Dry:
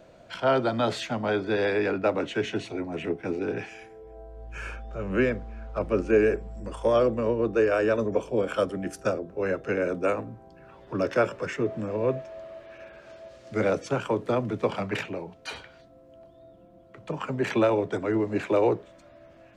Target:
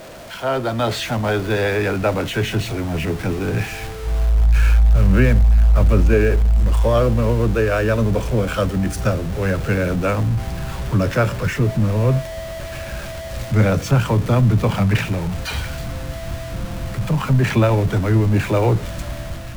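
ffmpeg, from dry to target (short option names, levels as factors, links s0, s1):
-af "aeval=exprs='val(0)+0.5*0.0224*sgn(val(0))':c=same,dynaudnorm=f=480:g=3:m=2,asubboost=boost=9.5:cutoff=120"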